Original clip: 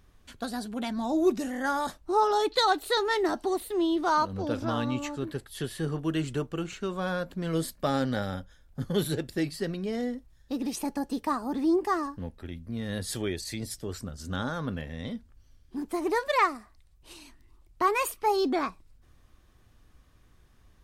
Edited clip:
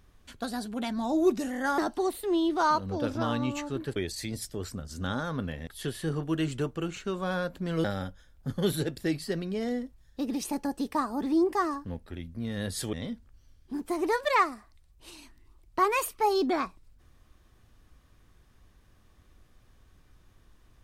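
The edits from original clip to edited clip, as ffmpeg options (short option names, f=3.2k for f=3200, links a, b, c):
-filter_complex "[0:a]asplit=6[a][b][c][d][e][f];[a]atrim=end=1.782[g];[b]atrim=start=3.248:end=5.432[h];[c]atrim=start=13.248:end=14.962[i];[d]atrim=start=5.428:end=7.602[j];[e]atrim=start=8.158:end=13.252[k];[f]atrim=start=14.958[l];[g][h]acrossfade=d=0.004:c1=hsin:c2=hsin[m];[m][i]acrossfade=d=0.004:c1=hsin:c2=hsin[n];[n][j]acrossfade=d=0.004:c1=hsin:c2=hsin[o];[o][k]acrossfade=d=0.004:c1=hsin:c2=hsin[p];[p][l]acrossfade=d=0.004:c1=hsin:c2=hsin"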